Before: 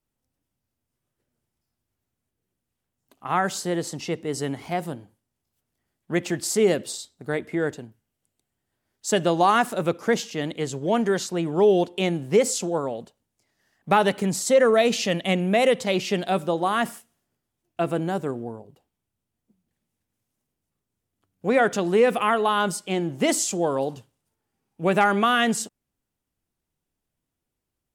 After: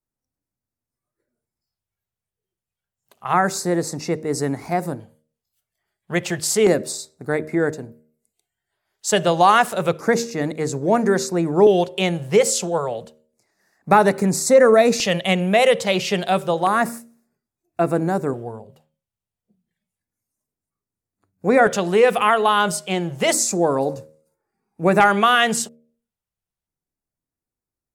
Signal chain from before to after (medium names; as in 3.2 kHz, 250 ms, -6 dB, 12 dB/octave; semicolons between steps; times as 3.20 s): de-hum 77.55 Hz, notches 8; spectral noise reduction 12 dB; LFO notch square 0.3 Hz 280–3100 Hz; trim +5.5 dB